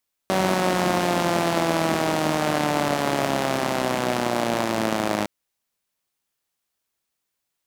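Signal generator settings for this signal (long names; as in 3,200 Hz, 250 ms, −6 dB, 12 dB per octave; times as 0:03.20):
pulse-train model of a four-cylinder engine, changing speed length 4.96 s, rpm 5,700, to 3,100, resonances 220/320/590 Hz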